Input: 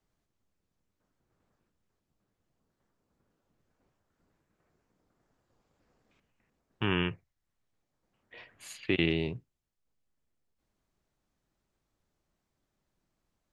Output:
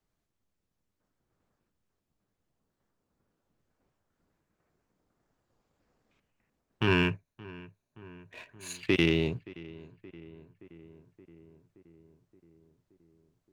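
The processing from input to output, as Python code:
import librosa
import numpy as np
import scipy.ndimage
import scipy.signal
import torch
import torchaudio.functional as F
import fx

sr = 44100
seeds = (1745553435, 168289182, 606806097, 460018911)

y = fx.ripple_eq(x, sr, per_octave=1.5, db=9, at=(6.87, 8.79))
y = fx.leveller(y, sr, passes=1)
y = fx.echo_filtered(y, sr, ms=573, feedback_pct=69, hz=2100.0, wet_db=-19.5)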